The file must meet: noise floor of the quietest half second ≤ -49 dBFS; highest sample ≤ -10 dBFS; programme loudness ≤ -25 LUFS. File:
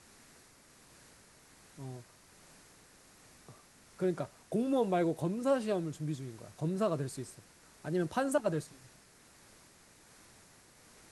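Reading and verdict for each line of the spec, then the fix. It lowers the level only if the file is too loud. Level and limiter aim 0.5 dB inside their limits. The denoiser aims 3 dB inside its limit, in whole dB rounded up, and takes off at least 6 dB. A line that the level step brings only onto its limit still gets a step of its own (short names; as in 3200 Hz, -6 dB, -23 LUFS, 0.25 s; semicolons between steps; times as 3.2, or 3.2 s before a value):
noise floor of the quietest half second -61 dBFS: OK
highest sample -17.5 dBFS: OK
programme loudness -34.5 LUFS: OK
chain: none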